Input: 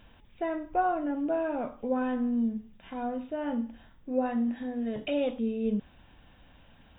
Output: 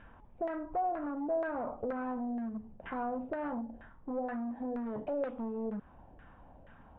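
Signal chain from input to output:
0:01.67–0:03.69: harmonic and percussive parts rebalanced percussive +6 dB
downward compressor 8 to 1, threshold −33 dBFS, peak gain reduction 11.5 dB
hard clipping −35 dBFS, distortion −13 dB
auto-filter low-pass saw down 2.1 Hz 570–1,700 Hz

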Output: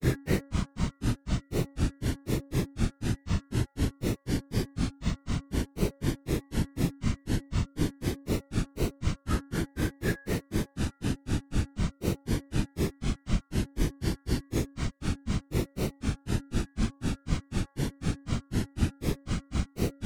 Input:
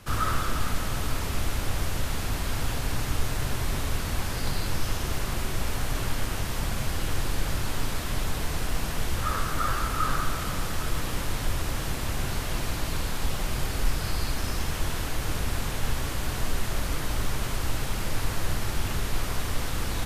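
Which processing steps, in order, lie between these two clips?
variable-slope delta modulation 64 kbit/s
low shelf with overshoot 430 Hz +11 dB, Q 1.5
notch comb filter 1,200 Hz
granular cloud 168 ms, grains 4 per second, pitch spread up and down by 7 semitones
hum removal 277.4 Hz, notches 7

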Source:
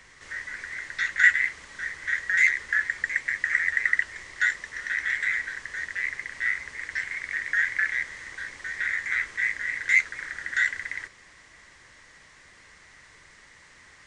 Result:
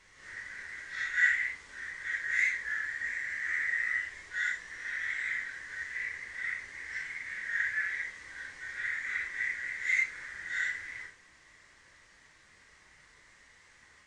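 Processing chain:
random phases in long frames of 200 ms
level −7 dB

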